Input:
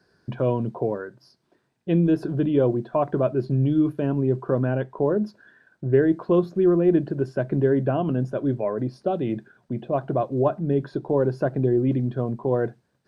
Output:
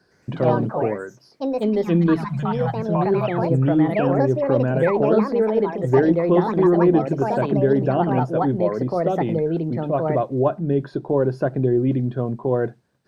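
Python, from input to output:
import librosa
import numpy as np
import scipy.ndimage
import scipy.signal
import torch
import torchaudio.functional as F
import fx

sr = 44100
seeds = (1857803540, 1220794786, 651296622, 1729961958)

y = fx.cheby1_bandstop(x, sr, low_hz=170.0, high_hz=700.0, order=3, at=(2.24, 3.44))
y = fx.spec_paint(y, sr, seeds[0], shape='fall', start_s=4.83, length_s=0.31, low_hz=240.0, high_hz=2000.0, level_db=-31.0)
y = fx.echo_pitch(y, sr, ms=112, semitones=4, count=2, db_per_echo=-3.0)
y = F.gain(torch.from_numpy(y), 2.0).numpy()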